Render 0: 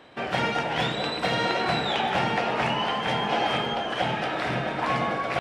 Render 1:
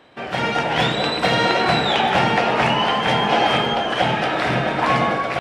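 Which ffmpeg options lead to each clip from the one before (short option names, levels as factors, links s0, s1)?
-af "dynaudnorm=f=180:g=5:m=2.51"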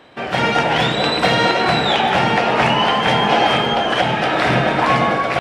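-af "alimiter=limit=0.376:level=0:latency=1:release=420,volume=1.68"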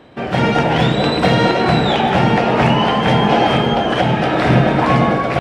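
-af "lowshelf=f=500:g=11.5,volume=0.708"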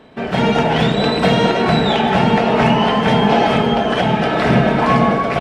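-af "aecho=1:1:4.6:0.43,volume=0.891"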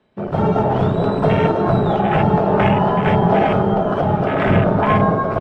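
-af "aecho=1:1:184:0.133,afwtdn=0.112,afreqshift=-32,volume=0.891"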